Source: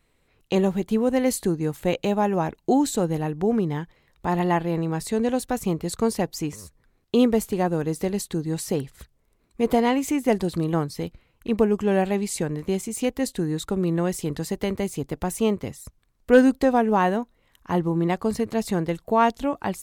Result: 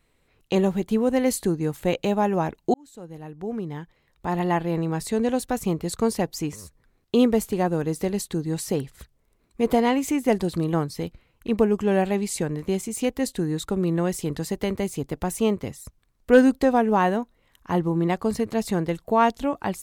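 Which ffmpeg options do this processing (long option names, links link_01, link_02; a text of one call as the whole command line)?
ffmpeg -i in.wav -filter_complex "[0:a]asplit=2[link_01][link_02];[link_01]atrim=end=2.74,asetpts=PTS-STARTPTS,afade=type=out:start_time=2.736:duration=0.004:curve=hsin[link_03];[link_02]atrim=start=2.74,asetpts=PTS-STARTPTS,afade=type=in:duration=2.03[link_04];[link_03][link_04]concat=n=2:v=0:a=1" out.wav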